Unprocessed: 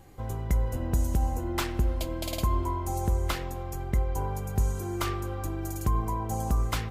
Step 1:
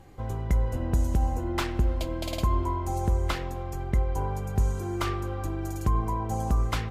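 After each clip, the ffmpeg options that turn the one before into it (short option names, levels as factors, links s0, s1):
-af "highshelf=f=8200:g=-11,volume=1.19"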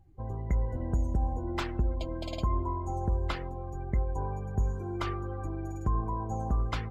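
-af "afftdn=nr=21:nf=-41,volume=0.631"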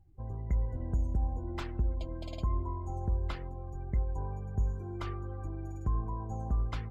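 -af "lowshelf=f=180:g=6.5,volume=0.422"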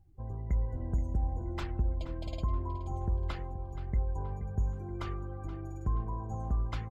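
-filter_complex "[0:a]asplit=2[s0][s1];[s1]adelay=476,lowpass=f=3900:p=1,volume=0.224,asplit=2[s2][s3];[s3]adelay=476,lowpass=f=3900:p=1,volume=0.45,asplit=2[s4][s5];[s5]adelay=476,lowpass=f=3900:p=1,volume=0.45,asplit=2[s6][s7];[s7]adelay=476,lowpass=f=3900:p=1,volume=0.45[s8];[s0][s2][s4][s6][s8]amix=inputs=5:normalize=0"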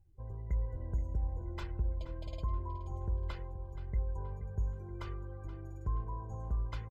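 -af "aecho=1:1:2:0.45,volume=0.501"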